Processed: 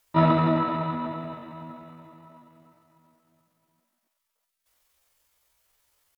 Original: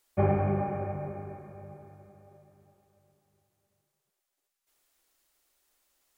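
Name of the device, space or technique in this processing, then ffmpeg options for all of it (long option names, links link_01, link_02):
chipmunk voice: -af "asetrate=72056,aresample=44100,atempo=0.612027,volume=5.5dB"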